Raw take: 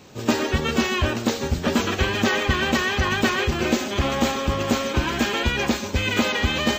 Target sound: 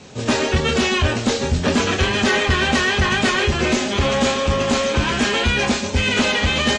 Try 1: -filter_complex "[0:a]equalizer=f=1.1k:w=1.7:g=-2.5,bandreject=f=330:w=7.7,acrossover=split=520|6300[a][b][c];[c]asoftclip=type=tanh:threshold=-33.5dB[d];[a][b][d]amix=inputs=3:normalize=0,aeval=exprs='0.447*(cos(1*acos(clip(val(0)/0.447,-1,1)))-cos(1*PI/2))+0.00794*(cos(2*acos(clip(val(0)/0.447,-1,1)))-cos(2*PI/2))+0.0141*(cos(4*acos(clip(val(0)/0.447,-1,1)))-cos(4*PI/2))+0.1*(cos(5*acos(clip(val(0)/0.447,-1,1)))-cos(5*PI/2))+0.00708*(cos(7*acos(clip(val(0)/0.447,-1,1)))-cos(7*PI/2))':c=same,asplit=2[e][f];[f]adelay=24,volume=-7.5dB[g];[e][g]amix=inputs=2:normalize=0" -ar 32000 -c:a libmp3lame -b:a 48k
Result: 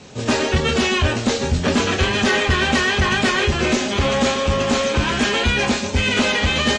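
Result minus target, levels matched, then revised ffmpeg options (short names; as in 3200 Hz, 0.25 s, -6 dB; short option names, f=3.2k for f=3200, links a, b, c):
soft clip: distortion +11 dB
-filter_complex "[0:a]equalizer=f=1.1k:w=1.7:g=-2.5,bandreject=f=330:w=7.7,acrossover=split=520|6300[a][b][c];[c]asoftclip=type=tanh:threshold=-26.5dB[d];[a][b][d]amix=inputs=3:normalize=0,aeval=exprs='0.447*(cos(1*acos(clip(val(0)/0.447,-1,1)))-cos(1*PI/2))+0.00794*(cos(2*acos(clip(val(0)/0.447,-1,1)))-cos(2*PI/2))+0.0141*(cos(4*acos(clip(val(0)/0.447,-1,1)))-cos(4*PI/2))+0.1*(cos(5*acos(clip(val(0)/0.447,-1,1)))-cos(5*PI/2))+0.00708*(cos(7*acos(clip(val(0)/0.447,-1,1)))-cos(7*PI/2))':c=same,asplit=2[e][f];[f]adelay=24,volume=-7.5dB[g];[e][g]amix=inputs=2:normalize=0" -ar 32000 -c:a libmp3lame -b:a 48k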